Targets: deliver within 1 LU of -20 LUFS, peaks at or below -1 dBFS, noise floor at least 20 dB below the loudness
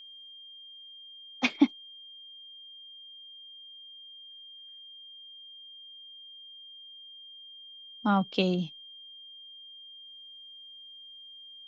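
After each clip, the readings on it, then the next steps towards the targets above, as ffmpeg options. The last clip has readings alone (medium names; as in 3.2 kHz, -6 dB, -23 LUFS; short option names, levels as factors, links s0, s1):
steady tone 3.2 kHz; tone level -46 dBFS; loudness -36.5 LUFS; peak level -10.0 dBFS; loudness target -20.0 LUFS
-> -af "bandreject=f=3200:w=30"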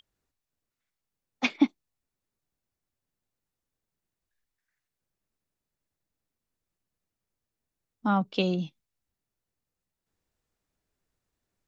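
steady tone not found; loudness -28.5 LUFS; peak level -10.5 dBFS; loudness target -20.0 LUFS
-> -af "volume=2.66"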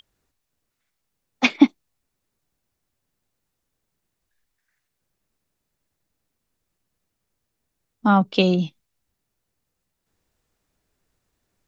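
loudness -20.0 LUFS; peak level -2.0 dBFS; noise floor -79 dBFS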